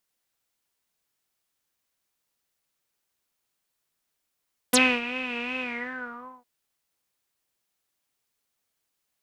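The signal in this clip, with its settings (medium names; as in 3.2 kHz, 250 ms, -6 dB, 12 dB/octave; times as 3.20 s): synth patch with vibrato B4, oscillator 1 saw, sub -2 dB, noise -3 dB, filter lowpass, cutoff 850 Hz, Q 11, filter envelope 4 oct, filter decay 0.05 s, attack 8.5 ms, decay 0.27 s, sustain -15 dB, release 0.82 s, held 0.89 s, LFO 2.7 Hz, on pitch 71 cents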